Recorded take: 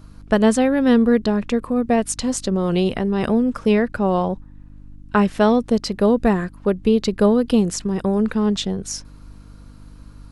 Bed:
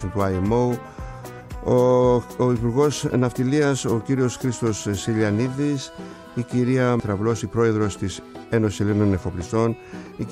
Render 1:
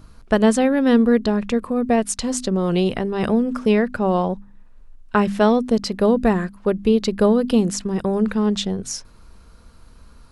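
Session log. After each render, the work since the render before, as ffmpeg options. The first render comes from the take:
-af "bandreject=f=50:t=h:w=4,bandreject=f=100:t=h:w=4,bandreject=f=150:t=h:w=4,bandreject=f=200:t=h:w=4,bandreject=f=250:t=h:w=4,bandreject=f=300:t=h:w=4"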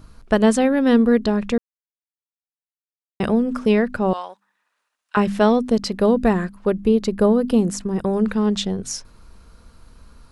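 -filter_complex "[0:a]asettb=1/sr,asplit=3[s0][s1][s2];[s0]atrim=end=4.134[s3];[s1]atrim=start=4.13:end=5.17,asetpts=PTS-STARTPTS,afade=t=in:d=0.004:c=qsin,afade=t=out:st=1.036:d=0.004:c=qsin,highpass=1200[s4];[s2]atrim=start=5.166[s5];[s3][s4]acrossfade=d=0.004:c1=hsin:c2=qsin[s6];[s6][s5]acrossfade=d=0.004:c1=qsin:c2=hsin,asettb=1/sr,asplit=3[s7][s8][s9];[s7]atrim=end=6.804[s10];[s8]atrim=start=6.8:end=8.03,asetpts=PTS-STARTPTS,afade=t=in:d=0.004:c=qsin,afade=t=out:st=1.226:d=0.004:c=qsin,equalizer=f=3600:t=o:w=1.9:g=-6[s11];[s9]atrim=start=8.026[s12];[s10][s11]acrossfade=d=0.004:c1=hsin:c2=qsin[s13];[s13][s12]acrossfade=d=0.004:c1=qsin:c2=hsin,asplit=3[s14][s15][s16];[s14]atrim=end=1.58,asetpts=PTS-STARTPTS,afade=t=out:st=1.576:d=0.004:c=hsin[s17];[s15]atrim=start=1.58:end=3.2,asetpts=PTS-STARTPTS,volume=0[s18];[s16]atrim=start=3.2,asetpts=PTS-STARTPTS,afade=t=in:d=0.004:c=hsin[s19];[s17][s18][s19]concat=n=3:v=0:a=1"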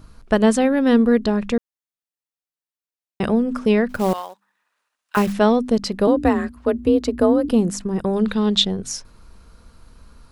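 -filter_complex "[0:a]asettb=1/sr,asplit=3[s0][s1][s2];[s0]atrim=end=3.894[s3];[s1]atrim=start=3.89:end=5.33,asetpts=PTS-STARTPTS,afade=t=in:d=0.004:c=qsin,afade=t=out:st=1.436:d=0.004:c=qsin,acrusher=bits=4:mode=log:mix=0:aa=0.000001[s4];[s2]atrim=start=5.326[s5];[s3][s4]acrossfade=d=0.004:c1=hsin:c2=qsin[s6];[s6][s5]acrossfade=d=0.004:c1=qsin:c2=hsin,asettb=1/sr,asplit=3[s7][s8][s9];[s7]atrim=end=6.074[s10];[s8]atrim=start=6.07:end=7.49,asetpts=PTS-STARTPTS,afade=t=in:d=0.004:c=qsin,afade=t=out:st=1.416:d=0.004:c=qsin,afreqshift=41[s11];[s9]atrim=start=7.486[s12];[s10][s11]acrossfade=d=0.004:c1=hsin:c2=qsin[s13];[s13][s12]acrossfade=d=0.004:c1=qsin:c2=hsin,asettb=1/sr,asplit=3[s14][s15][s16];[s14]atrim=end=8.164[s17];[s15]atrim=start=8.16:end=8.65,asetpts=PTS-STARTPTS,afade=t=in:d=0.004:c=qsin,afade=t=out:st=0.486:d=0.004:c=qsin,equalizer=f=3700:t=o:w=0.54:g=12[s18];[s16]atrim=start=8.646[s19];[s17][s18]acrossfade=d=0.004:c1=hsin:c2=qsin[s20];[s20][s19]acrossfade=d=0.004:c1=qsin:c2=hsin"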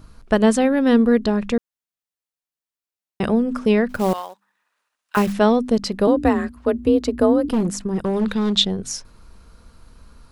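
-filter_complex "[0:a]asettb=1/sr,asplit=3[s0][s1][s2];[s0]atrim=end=7.524[s3];[s1]atrim=start=7.52:end=8.53,asetpts=PTS-STARTPTS,afade=t=in:d=0.004:c=qsin,afade=t=out:st=1.006:d=0.004:c=qsin,asoftclip=type=hard:threshold=0.168[s4];[s2]atrim=start=8.526[s5];[s3][s4]acrossfade=d=0.004:c1=hsin:c2=qsin[s6];[s6][s5]acrossfade=d=0.004:c1=qsin:c2=hsin"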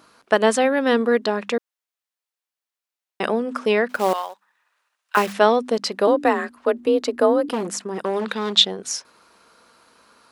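-af "highpass=370,equalizer=f=1700:w=0.33:g=4"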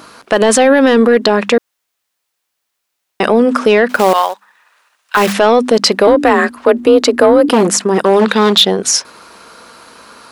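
-af "acontrast=74,alimiter=level_in=2.99:limit=0.891:release=50:level=0:latency=1"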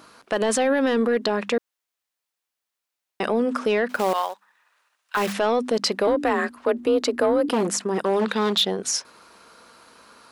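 -af "volume=0.251"

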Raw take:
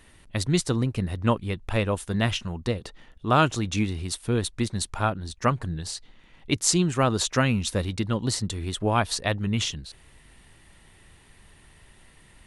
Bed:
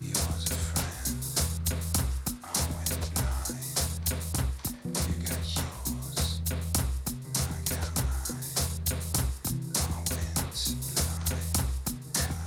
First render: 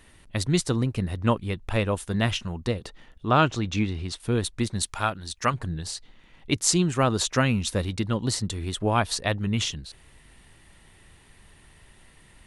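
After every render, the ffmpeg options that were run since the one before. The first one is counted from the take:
-filter_complex "[0:a]asettb=1/sr,asplit=3[s0][s1][s2];[s0]atrim=end=3.274[s3];[s1]atrim=start=3.27:end=4.2,asetpts=PTS-STARTPTS,afade=t=in:d=0.004:c=qsin,afade=t=out:st=0.926:d=0.004:c=qsin,lowpass=5300[s4];[s2]atrim=start=4.196[s5];[s3][s4]acrossfade=d=0.004:c1=hsin:c2=qsin[s6];[s6][s5]acrossfade=d=0.004:c1=qsin:c2=hsin,asettb=1/sr,asplit=3[s7][s8][s9];[s7]atrim=end=4.834[s10];[s8]atrim=start=4.83:end=5.54,asetpts=PTS-STARTPTS,afade=t=in:d=0.004:c=qsin,afade=t=out:st=0.706:d=0.004:c=qsin,tiltshelf=f=1100:g=-5.5[s11];[s9]atrim=start=5.536[s12];[s10][s11]acrossfade=d=0.004:c1=hsin:c2=qsin[s13];[s13][s12]acrossfade=d=0.004:c1=qsin:c2=hsin"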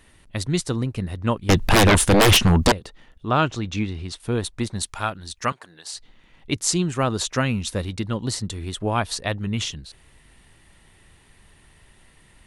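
-filter_complex "[0:a]asettb=1/sr,asplit=3[s0][s1][s2];[s0]atrim=end=1.494[s3];[s1]atrim=start=1.49:end=2.72,asetpts=PTS-STARTPTS,afade=t=in:d=0.004:c=qsin,afade=t=out:st=1.226:d=0.004:c=qsin,aeval=exprs='0.299*sin(PI/2*6.31*val(0)/0.299)':c=same[s4];[s2]atrim=start=2.716[s5];[s3][s4]acrossfade=d=0.004:c1=hsin:c2=qsin[s6];[s6][s5]acrossfade=d=0.004:c1=qsin:c2=hsin,asettb=1/sr,asplit=3[s7][s8][s9];[s7]atrim=end=4.274[s10];[s8]atrim=start=4.27:end=4.84,asetpts=PTS-STARTPTS,afade=t=in:d=0.004:c=qsin,afade=t=out:st=0.566:d=0.004:c=qsin,equalizer=f=810:w=1.1:g=4.5[s11];[s9]atrim=start=4.836[s12];[s10][s11]acrossfade=d=0.004:c1=hsin:c2=qsin[s13];[s13][s12]acrossfade=d=0.004:c1=qsin:c2=hsin,asettb=1/sr,asplit=3[s14][s15][s16];[s14]atrim=end=5.524[s17];[s15]atrim=start=5.52:end=5.94,asetpts=PTS-STARTPTS,afade=t=in:d=0.004:c=qsin,afade=t=out:st=0.416:d=0.004:c=qsin,highpass=620[s18];[s16]atrim=start=5.936[s19];[s17][s18]acrossfade=d=0.004:c1=hsin:c2=qsin[s20];[s20][s19]acrossfade=d=0.004:c1=qsin:c2=hsin"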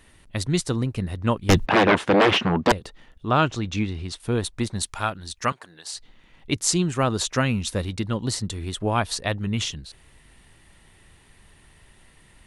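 -filter_complex "[0:a]asplit=3[s0][s1][s2];[s0]afade=t=out:st=1.65:d=0.02[s3];[s1]highpass=220,lowpass=2500,afade=t=in:st=1.65:d=0.02,afade=t=out:st=2.69:d=0.02[s4];[s2]afade=t=in:st=2.69:d=0.02[s5];[s3][s4][s5]amix=inputs=3:normalize=0"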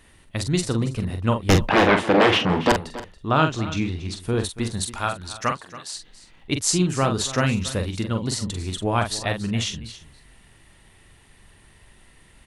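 -filter_complex "[0:a]asplit=2[s0][s1];[s1]adelay=44,volume=0.473[s2];[s0][s2]amix=inputs=2:normalize=0,aecho=1:1:280:0.158"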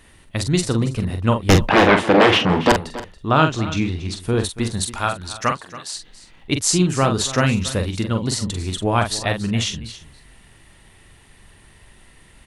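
-af "volume=1.5,alimiter=limit=0.794:level=0:latency=1"

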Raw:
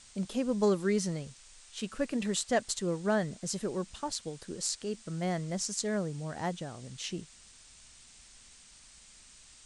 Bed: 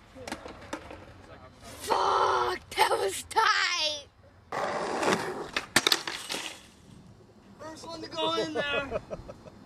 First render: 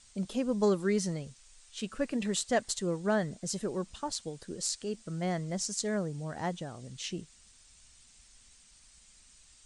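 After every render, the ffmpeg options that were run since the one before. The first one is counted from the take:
-af "afftdn=nr=6:nf=-56"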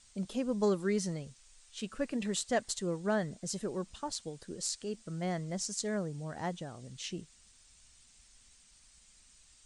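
-af "volume=0.75"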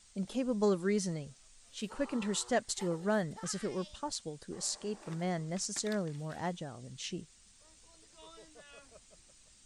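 -filter_complex "[1:a]volume=0.0501[s0];[0:a][s0]amix=inputs=2:normalize=0"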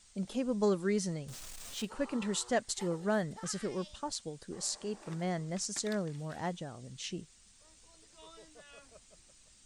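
-filter_complex "[0:a]asettb=1/sr,asplit=3[s0][s1][s2];[s0]atrim=end=1.284[s3];[s1]atrim=start=1.28:end=1.85,asetpts=PTS-STARTPTS,afade=t=in:d=0.004:c=qsin,afade=t=out:st=0.566:d=0.004:c=qsin,aeval=exprs='val(0)+0.5*0.00794*sgn(val(0))':c=same[s4];[s2]atrim=start=1.846[s5];[s3][s4]acrossfade=d=0.004:c1=hsin:c2=qsin[s6];[s6][s5]acrossfade=d=0.004:c1=qsin:c2=hsin"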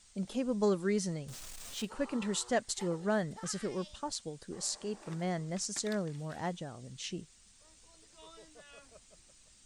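-filter_complex "[0:a]asettb=1/sr,asplit=3[s0][s1][s2];[s0]atrim=end=2.824[s3];[s1]atrim=start=2.82:end=3.27,asetpts=PTS-STARTPTS,afade=t=in:d=0.004:c=qsin,afade=t=out:st=0.446:d=0.004:c=qsin,lowpass=10000[s4];[s2]atrim=start=3.266[s5];[s3][s4]acrossfade=d=0.004:c1=hsin:c2=qsin[s6];[s6][s5]acrossfade=d=0.004:c1=qsin:c2=hsin"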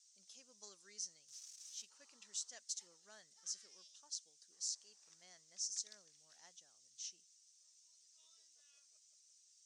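-af "bandpass=f=5900:t=q:w=4.5:csg=0"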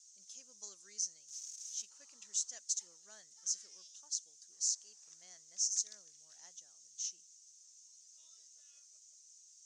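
-af "equalizer=f=6600:t=o:w=0.49:g=11"

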